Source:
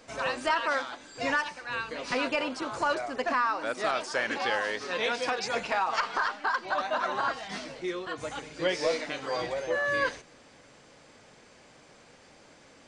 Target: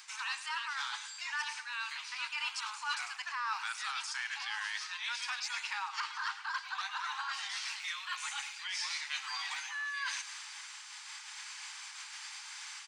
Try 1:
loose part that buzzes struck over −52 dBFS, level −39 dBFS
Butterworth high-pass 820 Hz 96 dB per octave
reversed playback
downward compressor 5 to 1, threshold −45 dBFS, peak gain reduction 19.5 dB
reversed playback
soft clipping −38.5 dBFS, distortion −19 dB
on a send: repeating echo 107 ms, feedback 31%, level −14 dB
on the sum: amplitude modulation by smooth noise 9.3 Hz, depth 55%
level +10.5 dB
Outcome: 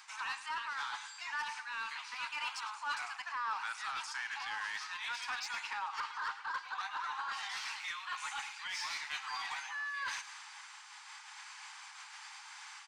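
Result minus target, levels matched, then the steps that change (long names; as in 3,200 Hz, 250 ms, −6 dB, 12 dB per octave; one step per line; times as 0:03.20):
soft clipping: distortion +16 dB; 1,000 Hz band +3.0 dB
add after Butterworth high-pass: tilt shelving filter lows −8 dB, about 1,300 Hz
change: soft clipping −28.5 dBFS, distortion −34 dB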